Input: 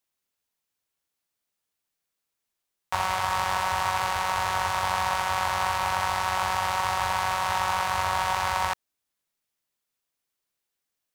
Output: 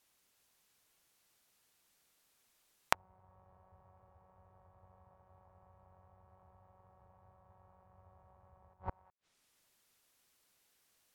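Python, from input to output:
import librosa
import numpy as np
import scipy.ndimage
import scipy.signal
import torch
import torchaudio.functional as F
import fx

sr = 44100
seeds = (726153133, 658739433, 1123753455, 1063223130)

y = x + 10.0 ** (-6.5 / 20.0) * np.pad(x, (int(366 * sr / 1000.0), 0))[:len(x)]
y = fx.env_lowpass_down(y, sr, base_hz=400.0, full_db=-26.5)
y = fx.gate_flip(y, sr, shuts_db=-31.0, range_db=-36)
y = y * librosa.db_to_amplitude(9.0)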